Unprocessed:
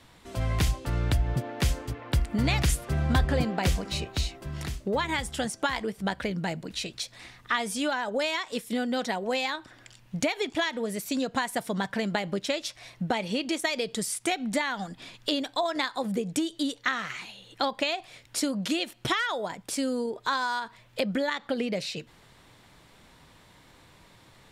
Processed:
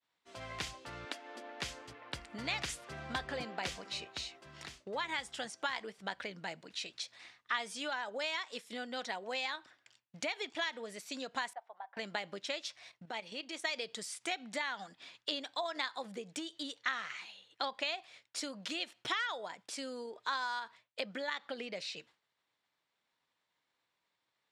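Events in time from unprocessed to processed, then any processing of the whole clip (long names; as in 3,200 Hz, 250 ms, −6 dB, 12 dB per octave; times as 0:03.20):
0:01.05–0:01.60: linear-phase brick-wall high-pass 210 Hz
0:11.53–0:11.97: four-pole ladder band-pass 840 Hz, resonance 70%
0:12.89–0:13.56: output level in coarse steps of 10 dB
whole clip: high-pass filter 890 Hz 6 dB per octave; downward expander −47 dBFS; low-pass filter 6,600 Hz 12 dB per octave; level −6 dB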